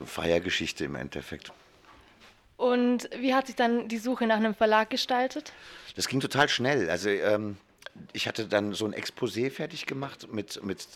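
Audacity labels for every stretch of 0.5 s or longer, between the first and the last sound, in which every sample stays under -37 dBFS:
1.510000	2.600000	silence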